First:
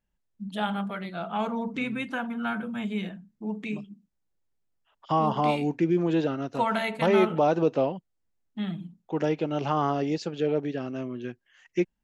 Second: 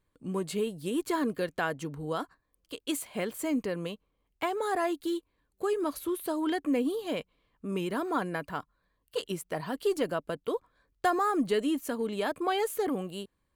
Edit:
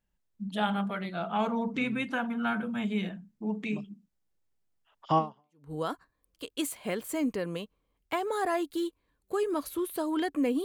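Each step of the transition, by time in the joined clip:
first
0:05.45: continue with second from 0:01.75, crossfade 0.54 s exponential

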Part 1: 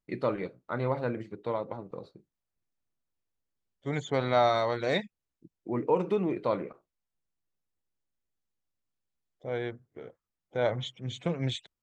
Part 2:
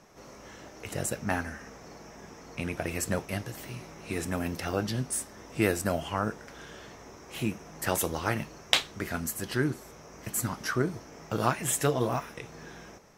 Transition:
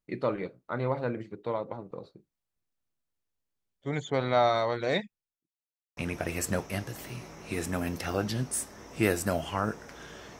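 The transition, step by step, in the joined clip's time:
part 1
0:05.04–0:05.51: fade out quadratic
0:05.51–0:05.97: silence
0:05.97: continue with part 2 from 0:02.56

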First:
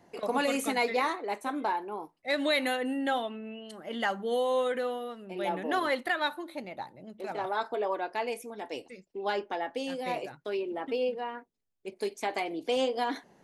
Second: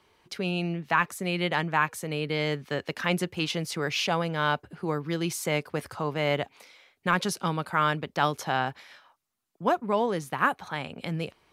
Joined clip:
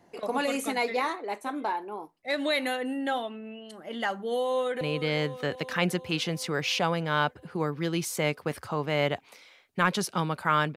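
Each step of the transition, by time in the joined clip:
first
0:04.39–0:04.81: delay throw 370 ms, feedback 70%, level −10.5 dB
0:04.81: continue with second from 0:02.09

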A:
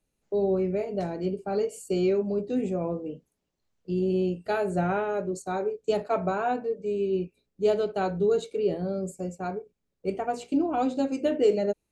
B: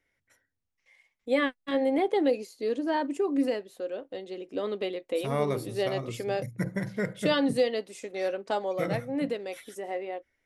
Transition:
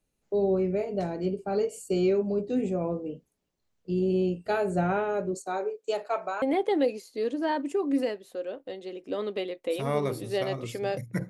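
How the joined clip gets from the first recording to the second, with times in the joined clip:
A
0:05.34–0:06.42: high-pass filter 290 Hz → 840 Hz
0:06.42: continue with B from 0:01.87

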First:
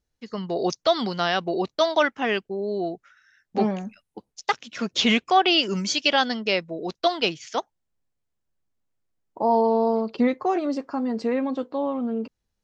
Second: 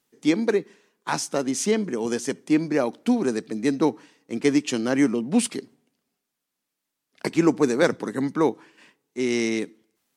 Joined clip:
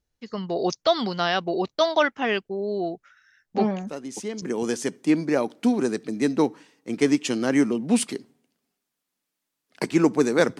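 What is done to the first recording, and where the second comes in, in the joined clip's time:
first
0:03.87: mix in second from 0:01.30 0.55 s −10 dB
0:04.42: continue with second from 0:01.85

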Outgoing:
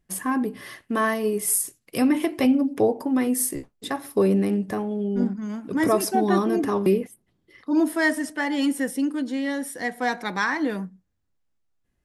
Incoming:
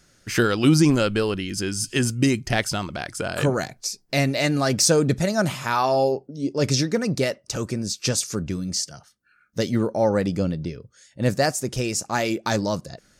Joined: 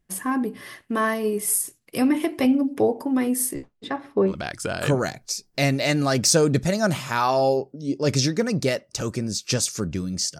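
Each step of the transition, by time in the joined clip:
outgoing
0:03.53–0:04.34: low-pass filter 7,700 Hz → 1,500 Hz
0:04.30: continue with incoming from 0:02.85, crossfade 0.08 s

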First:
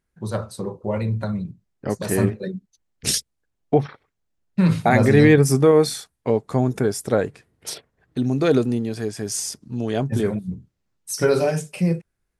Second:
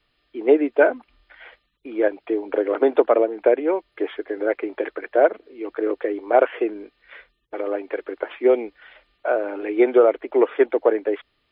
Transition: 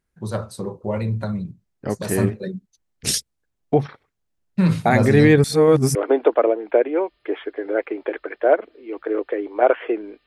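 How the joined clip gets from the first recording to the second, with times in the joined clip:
first
0:05.44–0:05.95: reverse
0:05.95: continue with second from 0:02.67

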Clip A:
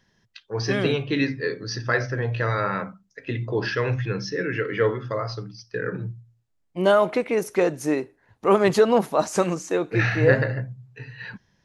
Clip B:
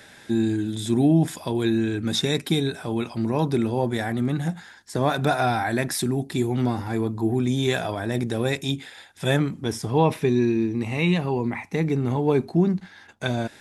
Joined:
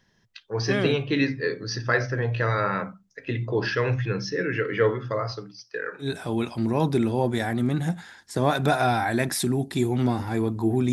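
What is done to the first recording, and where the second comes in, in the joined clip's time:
clip A
0:05.31–0:06.11: high-pass filter 150 Hz → 1,100 Hz
0:06.05: continue with clip B from 0:02.64, crossfade 0.12 s

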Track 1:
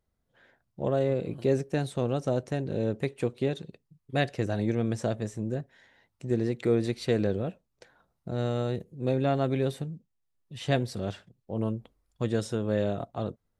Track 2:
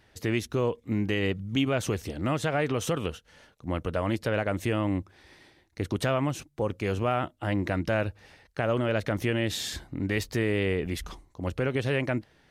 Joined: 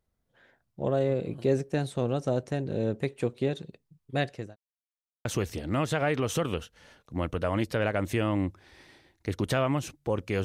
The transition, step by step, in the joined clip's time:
track 1
0:03.98–0:04.56: fade out equal-power
0:04.56–0:05.25: silence
0:05.25: continue with track 2 from 0:01.77

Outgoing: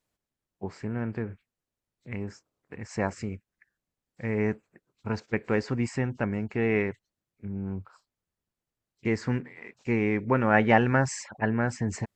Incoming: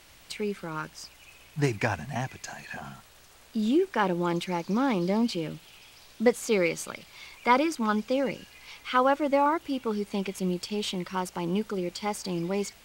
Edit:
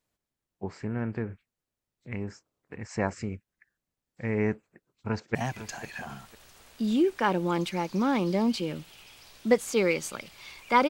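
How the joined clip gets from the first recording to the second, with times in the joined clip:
outgoing
0:04.66–0:05.35: delay throw 500 ms, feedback 20%, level −12 dB
0:05.35: continue with incoming from 0:02.10

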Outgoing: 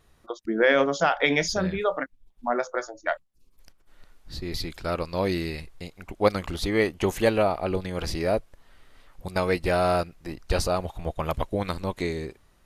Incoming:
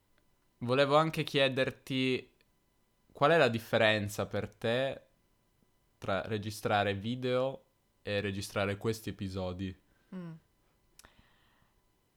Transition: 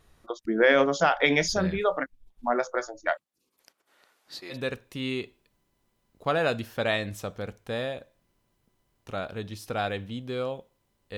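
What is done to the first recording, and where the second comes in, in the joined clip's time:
outgoing
0:03.11–0:04.57: high-pass filter 230 Hz → 630 Hz
0:04.53: continue with incoming from 0:01.48, crossfade 0.08 s

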